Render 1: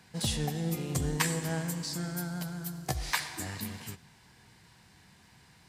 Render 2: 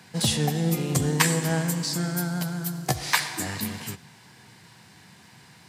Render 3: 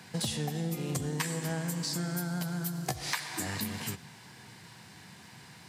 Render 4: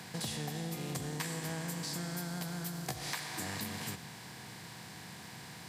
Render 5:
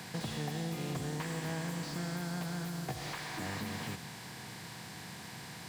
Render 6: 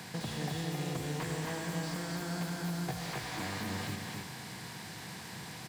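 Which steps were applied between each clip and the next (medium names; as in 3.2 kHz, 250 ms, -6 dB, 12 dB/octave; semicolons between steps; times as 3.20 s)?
high-pass 100 Hz 24 dB/octave; trim +8 dB
compression 5:1, threshold -31 dBFS, peak gain reduction 14.5 dB
spectral levelling over time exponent 0.6; trim -8 dB
slew-rate limiter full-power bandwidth 23 Hz; trim +2 dB
delay 269 ms -3 dB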